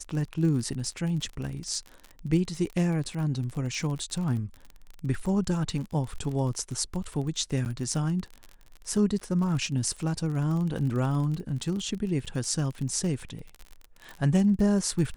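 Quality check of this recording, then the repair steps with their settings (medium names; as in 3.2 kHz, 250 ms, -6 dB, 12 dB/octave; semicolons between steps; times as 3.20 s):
crackle 39 per s -33 dBFS
7.65–7.66 s: dropout 9.5 ms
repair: de-click; interpolate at 7.65 s, 9.5 ms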